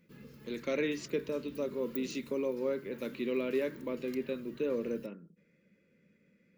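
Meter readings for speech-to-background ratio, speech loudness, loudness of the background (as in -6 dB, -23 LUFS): 16.0 dB, -35.5 LUFS, -51.5 LUFS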